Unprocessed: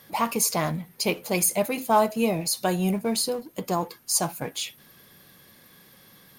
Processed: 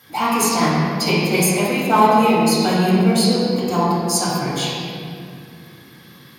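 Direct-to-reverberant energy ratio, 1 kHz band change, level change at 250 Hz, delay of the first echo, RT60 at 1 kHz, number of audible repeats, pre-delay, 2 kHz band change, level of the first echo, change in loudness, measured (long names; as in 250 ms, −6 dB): −9.0 dB, +10.0 dB, +11.0 dB, no echo audible, 2.1 s, no echo audible, 3 ms, +10.0 dB, no echo audible, +8.0 dB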